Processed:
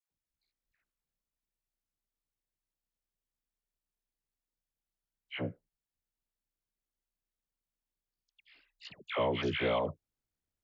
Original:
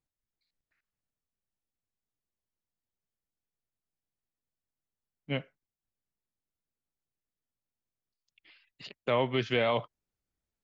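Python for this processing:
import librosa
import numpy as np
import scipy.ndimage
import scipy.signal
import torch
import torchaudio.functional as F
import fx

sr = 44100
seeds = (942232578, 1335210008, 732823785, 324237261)

y = x * np.sin(2.0 * np.pi * 31.0 * np.arange(len(x)) / sr)
y = fx.dispersion(y, sr, late='lows', ms=110.0, hz=1000.0)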